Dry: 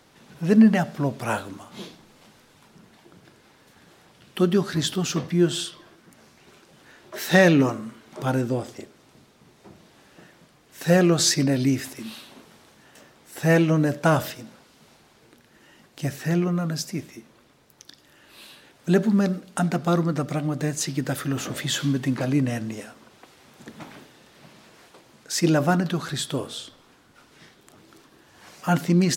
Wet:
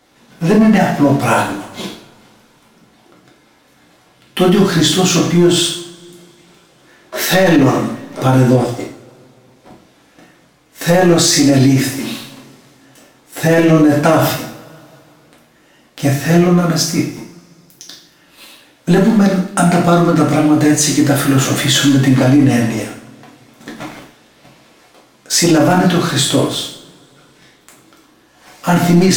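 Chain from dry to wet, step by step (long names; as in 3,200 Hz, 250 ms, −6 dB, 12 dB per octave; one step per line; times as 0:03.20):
leveller curve on the samples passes 2
coupled-rooms reverb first 0.53 s, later 2.7 s, from −27 dB, DRR −3.5 dB
brickwall limiter −5.5 dBFS, peak gain reduction 11.5 dB
level +3 dB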